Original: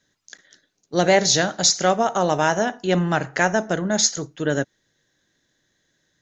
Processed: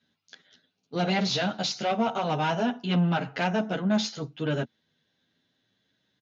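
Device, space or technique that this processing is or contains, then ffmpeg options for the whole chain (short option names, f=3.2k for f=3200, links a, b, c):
barber-pole flanger into a guitar amplifier: -filter_complex "[0:a]asplit=2[a][b];[b]adelay=10,afreqshift=0.43[c];[a][c]amix=inputs=2:normalize=1,asoftclip=type=tanh:threshold=-19dB,highpass=100,equalizer=f=230:t=q:w=4:g=5,equalizer=f=340:t=q:w=4:g=-7,equalizer=f=550:t=q:w=4:g=-5,equalizer=f=1.1k:t=q:w=4:g=-3,equalizer=f=1.8k:t=q:w=4:g=-9,equalizer=f=2.8k:t=q:w=4:g=4,lowpass=f=4.3k:w=0.5412,lowpass=f=4.3k:w=1.3066,volume=1.5dB"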